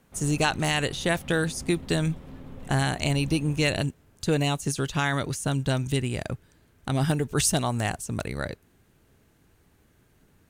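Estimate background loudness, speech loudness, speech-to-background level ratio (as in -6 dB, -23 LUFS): -44.5 LUFS, -26.5 LUFS, 18.0 dB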